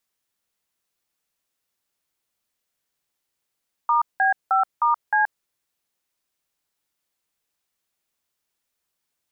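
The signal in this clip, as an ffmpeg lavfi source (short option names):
-f lavfi -i "aevalsrc='0.119*clip(min(mod(t,0.309),0.127-mod(t,0.309))/0.002,0,1)*(eq(floor(t/0.309),0)*(sin(2*PI*941*mod(t,0.309))+sin(2*PI*1209*mod(t,0.309)))+eq(floor(t/0.309),1)*(sin(2*PI*770*mod(t,0.309))+sin(2*PI*1633*mod(t,0.309)))+eq(floor(t/0.309),2)*(sin(2*PI*770*mod(t,0.309))+sin(2*PI*1336*mod(t,0.309)))+eq(floor(t/0.309),3)*(sin(2*PI*941*mod(t,0.309))+sin(2*PI*1209*mod(t,0.309)))+eq(floor(t/0.309),4)*(sin(2*PI*852*mod(t,0.309))+sin(2*PI*1633*mod(t,0.309))))':d=1.545:s=44100"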